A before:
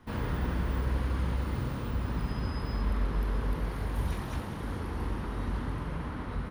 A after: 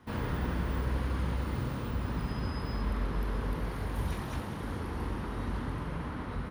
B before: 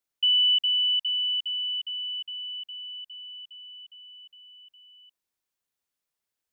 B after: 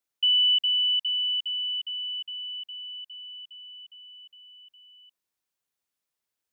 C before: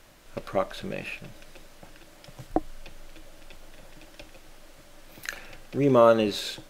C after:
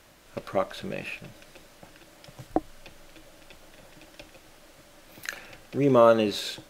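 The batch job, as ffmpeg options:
-af "highpass=frequency=52:poles=1"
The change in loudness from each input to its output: −1.5, 0.0, 0.0 LU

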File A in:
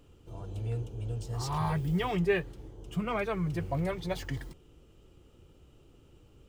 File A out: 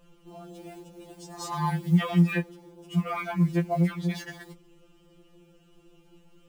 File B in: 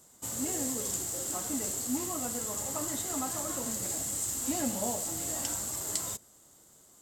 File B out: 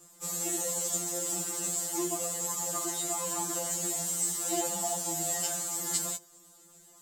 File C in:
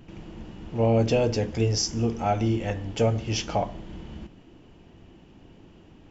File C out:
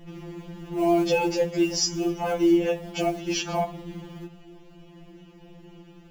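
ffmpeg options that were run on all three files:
-af "acrusher=bits=8:mode=log:mix=0:aa=0.000001,afftfilt=real='re*2.83*eq(mod(b,8),0)':imag='im*2.83*eq(mod(b,8),0)':win_size=2048:overlap=0.75,volume=4.5dB"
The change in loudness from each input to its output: +6.0, +2.0, +1.0 LU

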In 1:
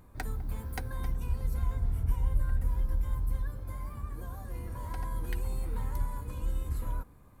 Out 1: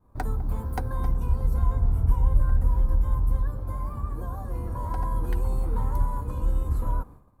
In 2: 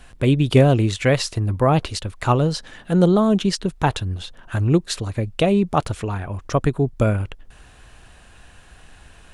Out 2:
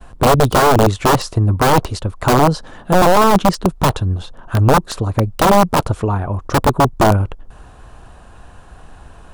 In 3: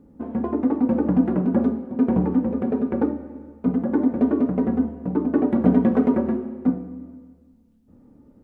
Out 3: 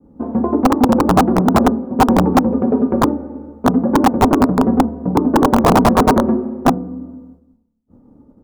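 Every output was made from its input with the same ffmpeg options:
-af "agate=range=-33dB:threshold=-47dB:ratio=3:detection=peak,aeval=exprs='(mod(3.98*val(0)+1,2)-1)/3.98':channel_layout=same,highshelf=frequency=1500:width_type=q:width=1.5:gain=-8.5,volume=7.5dB"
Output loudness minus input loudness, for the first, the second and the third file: +7.5, +5.0, +7.0 LU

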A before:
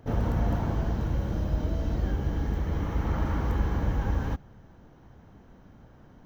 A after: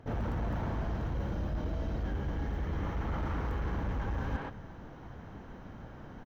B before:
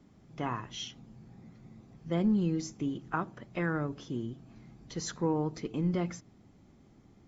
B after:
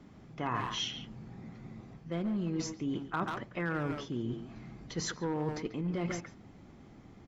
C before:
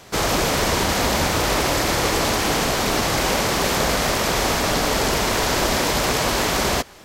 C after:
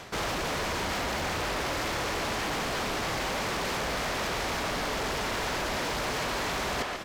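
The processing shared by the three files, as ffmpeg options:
-filter_complex "[0:a]asplit=2[link_01][link_02];[link_02]alimiter=limit=-15dB:level=0:latency=1,volume=0dB[link_03];[link_01][link_03]amix=inputs=2:normalize=0,asoftclip=type=hard:threshold=-17.5dB,highshelf=frequency=6700:gain=-7.5,asplit=2[link_04][link_05];[link_05]adelay=140,highpass=300,lowpass=3400,asoftclip=type=hard:threshold=-25.5dB,volume=-8dB[link_06];[link_04][link_06]amix=inputs=2:normalize=0,areverse,acompressor=threshold=-31dB:ratio=6,areverse,equalizer=frequency=1800:width=0.51:gain=3.5,volume=-1dB"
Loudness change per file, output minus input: −6.0, −2.0, −10.5 LU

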